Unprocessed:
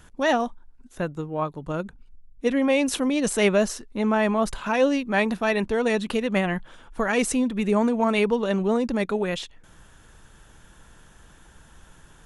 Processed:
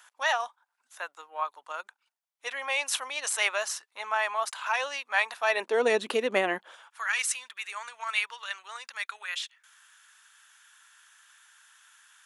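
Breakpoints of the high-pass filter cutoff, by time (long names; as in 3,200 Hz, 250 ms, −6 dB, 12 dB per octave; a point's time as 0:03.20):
high-pass filter 24 dB per octave
0:05.35 850 Hz
0:05.83 320 Hz
0:06.57 320 Hz
0:07.01 1,300 Hz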